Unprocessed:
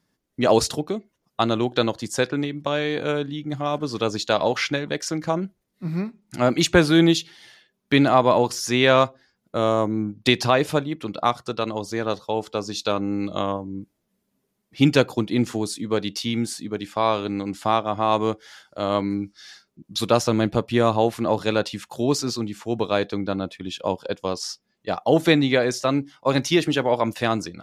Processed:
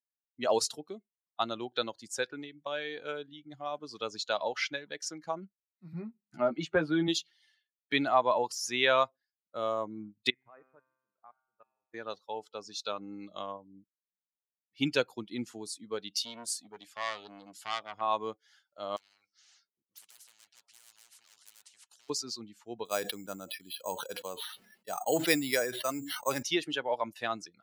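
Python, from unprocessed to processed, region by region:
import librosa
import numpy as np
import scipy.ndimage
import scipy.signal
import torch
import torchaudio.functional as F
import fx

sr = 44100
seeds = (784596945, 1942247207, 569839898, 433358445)

y = fx.chain(x, sr, fx.lowpass(hz=1100.0, slope=6),
    fx.doubler(ms=13.0, db=-5.0),
    fx.band_squash(depth_pct=40), at=(5.93, 7.08))
y = fx.chain(y, sr, fx.lowpass(hz=2100.0, slope=24),
    fx.level_steps(step_db=23),
    fx.comb_fb(f0_hz=130.0, decay_s=1.7, harmonics='all', damping=0.0, mix_pct=80), at=(10.3, 11.94))
y = fx.chain(y, sr, fx.high_shelf(hz=2600.0, db=5.5),
    fx.transformer_sat(knee_hz=2500.0), at=(16.11, 18.01))
y = fx.chain(y, sr, fx.lowpass(hz=7000.0, slope=12),
    fx.clip_hard(threshold_db=-19.0),
    fx.spectral_comp(ratio=10.0), at=(18.96, 22.1))
y = fx.chain(y, sr, fx.high_shelf(hz=3600.0, db=4.5),
    fx.resample_bad(factor=6, down='filtered', up='hold'),
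    fx.sustainer(db_per_s=46.0), at=(22.85, 26.43))
y = fx.bin_expand(y, sr, power=1.5)
y = fx.highpass(y, sr, hz=660.0, slope=6)
y = y * librosa.db_to_amplitude(-4.0)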